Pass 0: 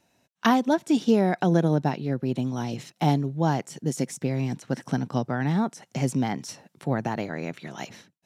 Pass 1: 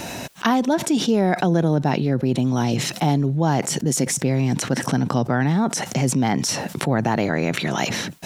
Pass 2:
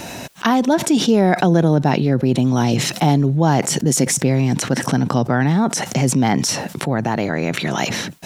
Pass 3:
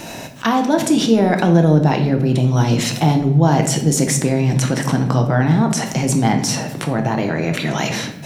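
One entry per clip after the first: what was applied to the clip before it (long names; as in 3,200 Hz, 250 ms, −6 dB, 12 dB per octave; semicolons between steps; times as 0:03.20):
envelope flattener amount 70%
automatic gain control gain up to 6 dB
convolution reverb RT60 0.80 s, pre-delay 6 ms, DRR 4 dB; level −1.5 dB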